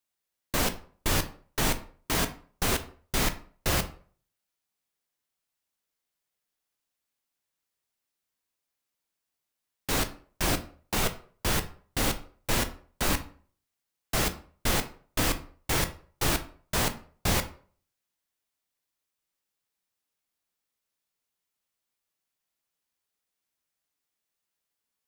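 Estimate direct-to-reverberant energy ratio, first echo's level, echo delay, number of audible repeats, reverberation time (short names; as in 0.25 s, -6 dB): 7.5 dB, none, none, none, 0.45 s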